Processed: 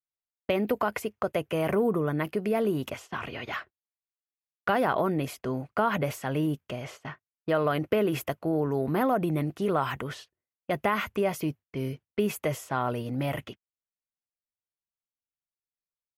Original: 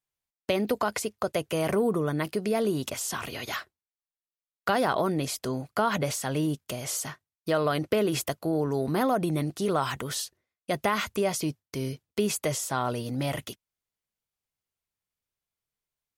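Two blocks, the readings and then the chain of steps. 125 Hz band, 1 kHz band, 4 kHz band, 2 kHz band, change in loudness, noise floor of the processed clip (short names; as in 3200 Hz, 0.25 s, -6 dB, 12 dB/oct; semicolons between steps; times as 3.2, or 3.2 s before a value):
0.0 dB, 0.0 dB, -6.0 dB, 0.0 dB, -0.5 dB, under -85 dBFS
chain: band shelf 6000 Hz -11.5 dB; low-pass opened by the level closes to 1800 Hz, open at -26.5 dBFS; gate -45 dBFS, range -14 dB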